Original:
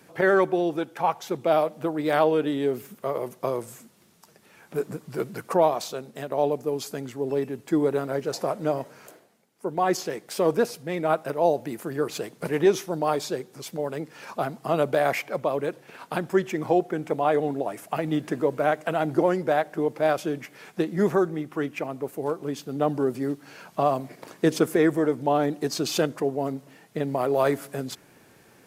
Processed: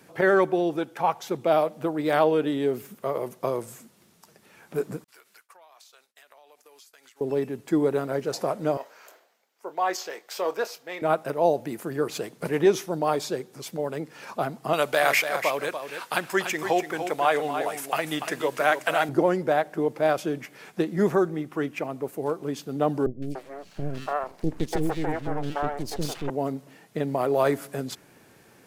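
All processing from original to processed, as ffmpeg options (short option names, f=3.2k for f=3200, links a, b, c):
-filter_complex "[0:a]asettb=1/sr,asplit=3[a][b][c];[a]atrim=end=5.044[d];[b]atrim=start=5.04:end=7.21,asetpts=PTS-STARTPTS,afade=t=in:d=0.004:c=qsin,afade=t=out:st=2.166:d=0.004:c=qsin,agate=range=-33dB:threshold=-36dB:ratio=3:release=100:detection=peak,highpass=1.5k,acompressor=threshold=-49dB:ratio=16:attack=3.2:release=140:knee=1:detection=peak[e];[c]atrim=start=7.206[f];[d][e]acrossfade=d=0.004:c1=hsin:c2=qsin[g];[g][f]acrossfade=d=0.004:c1=qsin:c2=hsin,asettb=1/sr,asplit=3[h][i][j];[h]atrim=end=8.774[k];[i]atrim=start=8.77:end=11.02,asetpts=PTS-STARTPTS,afade=t=in:d=0.004:c=qsin,afade=t=out:st=2.246:d=0.004:c=qsin,highpass=640,equalizer=f=9.7k:w=2.4:g=-11,asplit=2[l][m];[m]adelay=27,volume=-13dB[n];[l][n]amix=inputs=2:normalize=0,atrim=end_sample=99225[o];[j]atrim=start=11.016[p];[k][o]acrossfade=d=0.004:c1=hsin:c2=qsin[q];[q][p]acrossfade=d=0.004:c1=qsin:c2=hsin,asettb=1/sr,asplit=3[r][s][t];[r]atrim=end=14.734[u];[s]atrim=start=14.73:end=19.09,asetpts=PTS-STARTPTS,afade=t=in:d=0.004:c=qsin,afade=t=out:st=4.356:d=0.004:c=qsin,tiltshelf=f=680:g=-9.5,aecho=1:1:290:0.376,atrim=end_sample=192276[v];[t]atrim=start=19.086[w];[u][v]acrossfade=d=0.004:c1=hsin:c2=qsin[x];[x][w]acrossfade=d=0.004:c1=qsin:c2=hsin,asettb=1/sr,asplit=3[y][z][aa];[y]atrim=end=23.064[ab];[z]atrim=start=23.06:end=26.3,asetpts=PTS-STARTPTS,afade=t=in:d=0.004:c=qsin,afade=t=out:st=3.236:d=0.004:c=qsin,highshelf=f=11k:g=-8,aeval=exprs='max(val(0),0)':c=same,acrossover=split=440|2300[ac][ad][ae];[ae]adelay=160[af];[ad]adelay=290[ag];[ac][ag][af]amix=inputs=3:normalize=0,atrim=end_sample=142884[ah];[aa]atrim=start=26.296[ai];[ab][ah]acrossfade=d=0.004:c1=hsin:c2=qsin[aj];[aj][ai]acrossfade=d=0.004:c1=qsin:c2=hsin"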